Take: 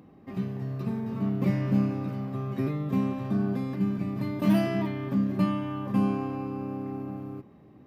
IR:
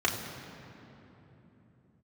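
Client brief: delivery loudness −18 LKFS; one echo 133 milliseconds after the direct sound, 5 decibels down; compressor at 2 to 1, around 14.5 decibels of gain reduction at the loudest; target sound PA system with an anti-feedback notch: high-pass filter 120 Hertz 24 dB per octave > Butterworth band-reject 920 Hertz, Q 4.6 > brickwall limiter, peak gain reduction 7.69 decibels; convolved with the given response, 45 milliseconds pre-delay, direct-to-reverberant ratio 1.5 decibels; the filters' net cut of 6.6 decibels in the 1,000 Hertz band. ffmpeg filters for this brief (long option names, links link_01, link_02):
-filter_complex "[0:a]equalizer=frequency=1000:width_type=o:gain=-8,acompressor=threshold=-47dB:ratio=2,aecho=1:1:133:0.562,asplit=2[link_01][link_02];[1:a]atrim=start_sample=2205,adelay=45[link_03];[link_02][link_03]afir=irnorm=-1:irlink=0,volume=-13dB[link_04];[link_01][link_04]amix=inputs=2:normalize=0,highpass=frequency=120:width=0.5412,highpass=frequency=120:width=1.3066,asuperstop=centerf=920:order=8:qfactor=4.6,volume=22.5dB,alimiter=limit=-9dB:level=0:latency=1"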